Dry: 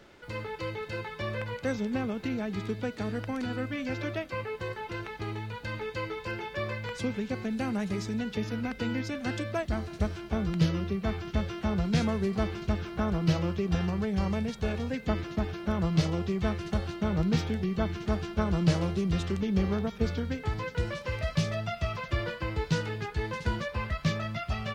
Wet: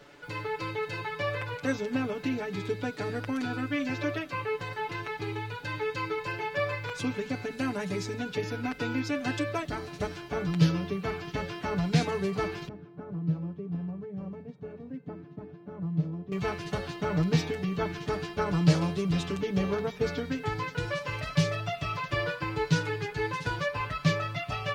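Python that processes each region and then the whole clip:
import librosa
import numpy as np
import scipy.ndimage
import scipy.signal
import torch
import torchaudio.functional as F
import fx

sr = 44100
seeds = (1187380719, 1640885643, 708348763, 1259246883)

y = fx.chain(x, sr, fx.bandpass_q(hz=160.0, q=1.2),
    fx.low_shelf(hz=190.0, db=-9.5), at=(12.68, 16.32))
y = fx.low_shelf(y, sr, hz=74.0, db=-10.0)
y = y + 0.91 * np.pad(y, (int(6.9 * sr / 1000.0), 0))[:len(y)]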